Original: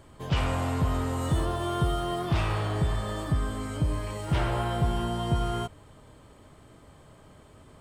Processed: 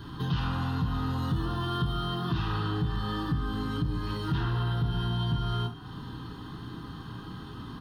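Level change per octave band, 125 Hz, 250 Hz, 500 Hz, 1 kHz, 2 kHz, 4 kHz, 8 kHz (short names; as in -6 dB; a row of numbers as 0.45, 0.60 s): -0.5 dB, 0.0 dB, -7.5 dB, -3.0 dB, -2.0 dB, +1.5 dB, under -10 dB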